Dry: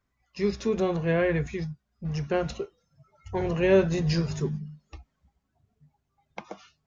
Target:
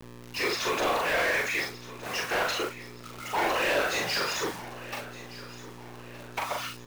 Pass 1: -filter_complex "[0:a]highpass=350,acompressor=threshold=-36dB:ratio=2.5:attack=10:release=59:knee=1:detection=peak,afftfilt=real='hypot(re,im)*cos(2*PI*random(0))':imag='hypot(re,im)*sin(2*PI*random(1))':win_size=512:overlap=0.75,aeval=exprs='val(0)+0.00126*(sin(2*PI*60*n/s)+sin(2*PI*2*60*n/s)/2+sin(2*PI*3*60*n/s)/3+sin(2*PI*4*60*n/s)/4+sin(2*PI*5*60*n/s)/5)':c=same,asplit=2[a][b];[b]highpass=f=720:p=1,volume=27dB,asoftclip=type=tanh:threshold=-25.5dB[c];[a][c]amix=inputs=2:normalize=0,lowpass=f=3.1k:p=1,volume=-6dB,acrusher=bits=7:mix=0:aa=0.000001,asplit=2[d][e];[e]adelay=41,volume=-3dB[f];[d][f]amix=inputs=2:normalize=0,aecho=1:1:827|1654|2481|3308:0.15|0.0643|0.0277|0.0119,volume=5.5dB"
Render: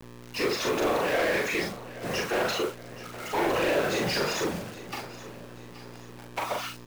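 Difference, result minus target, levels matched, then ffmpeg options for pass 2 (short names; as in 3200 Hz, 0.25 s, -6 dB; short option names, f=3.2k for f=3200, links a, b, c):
echo 0.392 s early; 250 Hz band +6.0 dB
-filter_complex "[0:a]highpass=810,acompressor=threshold=-36dB:ratio=2.5:attack=10:release=59:knee=1:detection=peak,afftfilt=real='hypot(re,im)*cos(2*PI*random(0))':imag='hypot(re,im)*sin(2*PI*random(1))':win_size=512:overlap=0.75,aeval=exprs='val(0)+0.00126*(sin(2*PI*60*n/s)+sin(2*PI*2*60*n/s)/2+sin(2*PI*3*60*n/s)/3+sin(2*PI*4*60*n/s)/4+sin(2*PI*5*60*n/s)/5)':c=same,asplit=2[a][b];[b]highpass=f=720:p=1,volume=27dB,asoftclip=type=tanh:threshold=-25.5dB[c];[a][c]amix=inputs=2:normalize=0,lowpass=f=3.1k:p=1,volume=-6dB,acrusher=bits=7:mix=0:aa=0.000001,asplit=2[d][e];[e]adelay=41,volume=-3dB[f];[d][f]amix=inputs=2:normalize=0,aecho=1:1:1219|2438|3657|4876:0.15|0.0643|0.0277|0.0119,volume=5.5dB"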